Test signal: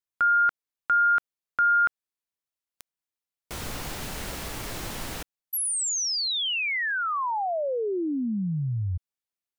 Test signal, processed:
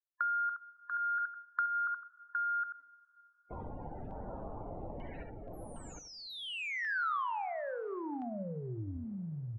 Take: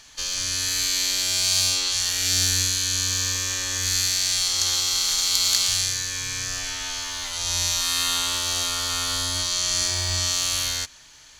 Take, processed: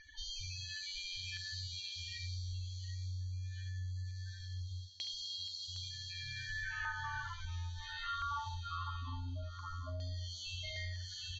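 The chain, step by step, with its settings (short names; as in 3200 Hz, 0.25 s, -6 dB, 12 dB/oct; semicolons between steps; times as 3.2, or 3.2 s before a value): loudest bins only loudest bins 32; LFO low-pass saw down 0.2 Hz 650–2300 Hz; tapped delay 46/70/762/849 ms -13/-8/-5/-18 dB; vocal rider within 4 dB 0.5 s; LFO notch saw down 0.73 Hz 980–2700 Hz; two-slope reverb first 0.3 s, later 4.7 s, from -19 dB, DRR 18.5 dB; compressor 5:1, threshold -36 dBFS; dynamic EQ 1300 Hz, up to +6 dB, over -49 dBFS, Q 1.2; gain -3.5 dB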